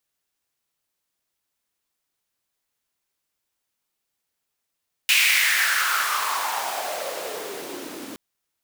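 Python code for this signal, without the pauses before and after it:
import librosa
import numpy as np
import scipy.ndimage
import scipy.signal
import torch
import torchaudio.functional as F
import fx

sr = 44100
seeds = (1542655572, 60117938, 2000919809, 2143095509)

y = fx.riser_noise(sr, seeds[0], length_s=3.07, colour='pink', kind='highpass', start_hz=2600.0, end_hz=250.0, q=4.4, swell_db=-21.0, law='exponential')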